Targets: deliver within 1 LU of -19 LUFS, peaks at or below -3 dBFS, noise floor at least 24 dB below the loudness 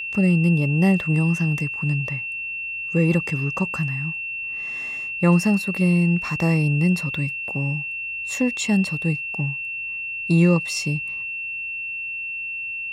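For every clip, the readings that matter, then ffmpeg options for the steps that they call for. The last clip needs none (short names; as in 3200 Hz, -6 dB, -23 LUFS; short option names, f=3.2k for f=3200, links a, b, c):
steady tone 2700 Hz; tone level -27 dBFS; loudness -22.0 LUFS; peak -7.0 dBFS; loudness target -19.0 LUFS
-> -af "bandreject=f=2.7k:w=30"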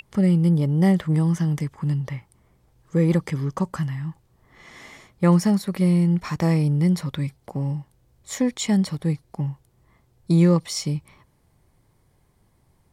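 steady tone none; loudness -22.5 LUFS; peak -7.5 dBFS; loudness target -19.0 LUFS
-> -af "volume=3.5dB"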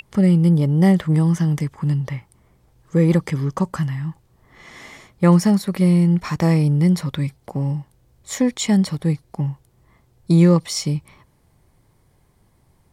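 loudness -19.0 LUFS; peak -4.0 dBFS; noise floor -60 dBFS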